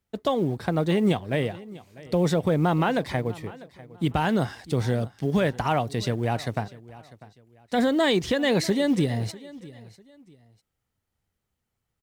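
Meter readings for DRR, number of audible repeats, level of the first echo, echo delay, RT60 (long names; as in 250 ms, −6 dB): no reverb audible, 2, −19.5 dB, 647 ms, no reverb audible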